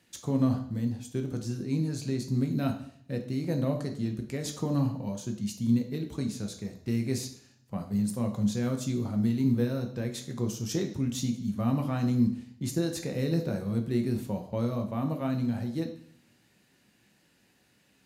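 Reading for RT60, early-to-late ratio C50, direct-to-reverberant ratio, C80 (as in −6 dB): 0.60 s, 9.5 dB, 4.0 dB, 13.5 dB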